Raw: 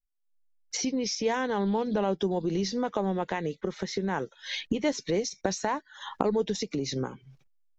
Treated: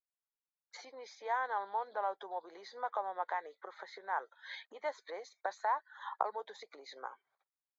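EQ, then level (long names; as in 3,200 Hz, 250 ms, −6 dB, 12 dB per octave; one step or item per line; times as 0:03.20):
moving average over 16 samples
high-pass filter 770 Hz 24 dB per octave
high-frequency loss of the air 76 metres
+1.5 dB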